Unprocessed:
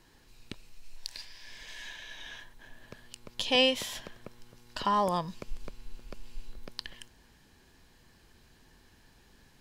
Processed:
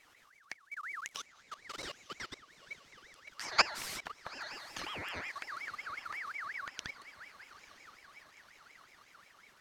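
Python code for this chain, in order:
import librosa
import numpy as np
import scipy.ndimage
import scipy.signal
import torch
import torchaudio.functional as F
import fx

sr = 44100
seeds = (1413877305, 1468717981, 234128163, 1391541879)

y = fx.level_steps(x, sr, step_db=22)
y = fx.echo_diffused(y, sr, ms=908, feedback_pct=61, wet_db=-14.5)
y = fx.ring_lfo(y, sr, carrier_hz=1700.0, swing_pct=35, hz=5.5)
y = F.gain(torch.from_numpy(y), 5.0).numpy()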